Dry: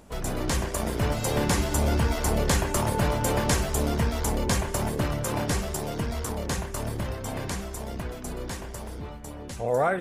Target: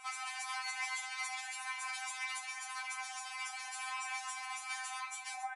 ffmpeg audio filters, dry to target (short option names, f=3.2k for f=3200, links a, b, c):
-af "afftfilt=real='re*between(b*sr/4096,670,11000)':imag='im*between(b*sr/4096,670,11000)':win_size=4096:overlap=0.75,acompressor=threshold=-41dB:ratio=16,adynamicequalizer=threshold=0.00891:dfrequency=8100:dqfactor=4.4:tfrequency=8100:tqfactor=4.4:attack=5:release=100:ratio=0.375:range=1.5:mode=cutabove:tftype=bell,aecho=1:1:20|48|87.2|142.1|218.9:0.631|0.398|0.251|0.158|0.1,acontrast=21,atempo=1.8,alimiter=level_in=6dB:limit=-24dB:level=0:latency=1:release=142,volume=-6dB,equalizer=f=2.3k:w=4.2:g=11.5,afftfilt=real='re*3.46*eq(mod(b,12),0)':imag='im*3.46*eq(mod(b,12),0)':win_size=2048:overlap=0.75,volume=1.5dB"